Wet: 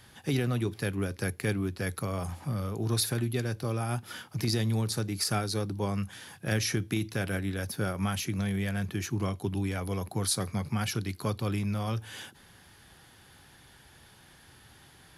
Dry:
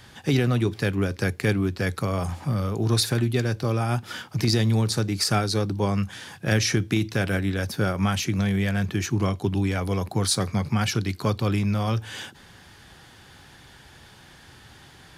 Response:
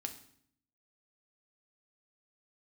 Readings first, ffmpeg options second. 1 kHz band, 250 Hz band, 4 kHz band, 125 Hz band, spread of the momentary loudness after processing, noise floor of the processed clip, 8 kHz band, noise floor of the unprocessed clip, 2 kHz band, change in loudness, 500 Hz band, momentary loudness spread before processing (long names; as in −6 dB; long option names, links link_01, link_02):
−7.0 dB, −7.0 dB, −7.0 dB, −7.0 dB, 6 LU, −56 dBFS, −4.0 dB, −50 dBFS, −7.0 dB, −7.0 dB, −7.0 dB, 5 LU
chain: -af "equalizer=frequency=11000:width=4.6:gain=14,volume=-7dB"